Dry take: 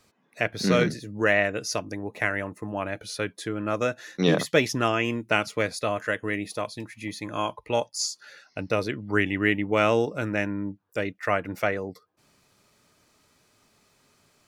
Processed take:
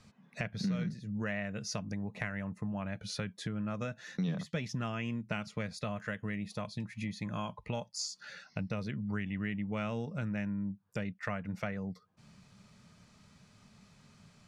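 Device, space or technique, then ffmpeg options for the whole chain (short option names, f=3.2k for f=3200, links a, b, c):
jukebox: -af "lowpass=7.2k,lowshelf=f=250:t=q:w=3:g=7.5,acompressor=threshold=-36dB:ratio=4"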